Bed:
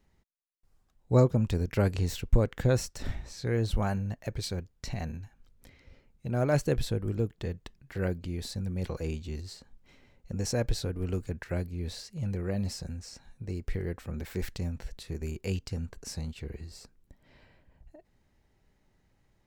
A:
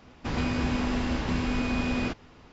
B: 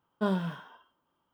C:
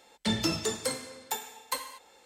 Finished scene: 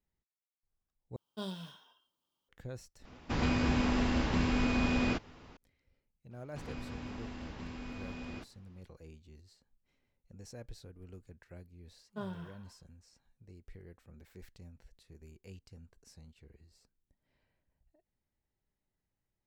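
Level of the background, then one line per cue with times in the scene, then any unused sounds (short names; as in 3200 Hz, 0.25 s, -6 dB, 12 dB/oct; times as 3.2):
bed -19 dB
1.16 replace with B -12.5 dB + resonant high shelf 2600 Hz +12.5 dB, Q 1.5
3.05 replace with A -2 dB
6.31 add A -16 dB
11.95 add B -12.5 dB
not used: C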